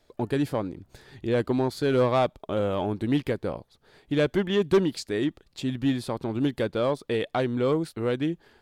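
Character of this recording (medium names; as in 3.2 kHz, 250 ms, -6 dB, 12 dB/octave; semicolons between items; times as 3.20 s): noise floor -67 dBFS; spectral tilt -6.0 dB/octave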